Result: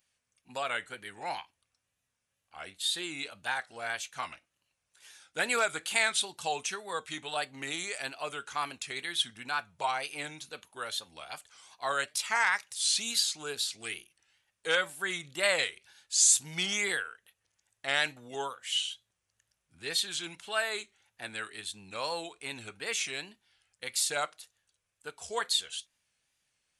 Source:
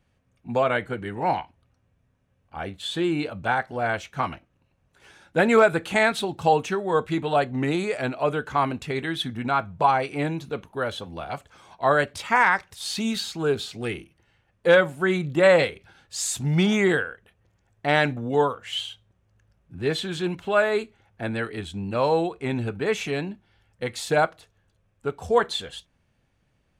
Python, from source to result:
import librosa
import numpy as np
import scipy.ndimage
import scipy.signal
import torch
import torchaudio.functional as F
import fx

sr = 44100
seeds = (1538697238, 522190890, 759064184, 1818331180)

y = scipy.signal.sosfilt(scipy.signal.ellip(4, 1.0, 40, 11000.0, 'lowpass', fs=sr, output='sos'), x)
y = fx.wow_flutter(y, sr, seeds[0], rate_hz=2.1, depth_cents=100.0)
y = F.preemphasis(torch.from_numpy(y), 0.97).numpy()
y = y * librosa.db_to_amplitude(7.0)